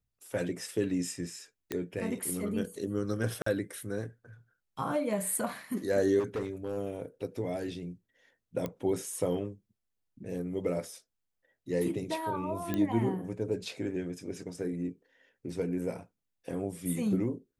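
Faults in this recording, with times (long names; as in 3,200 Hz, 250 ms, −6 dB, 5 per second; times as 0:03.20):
0:01.72: click −18 dBFS
0:03.42–0:03.46: drop-out 44 ms
0:06.19–0:06.78: clipping −29 dBFS
0:08.66: click −21 dBFS
0:12.74: click −18 dBFS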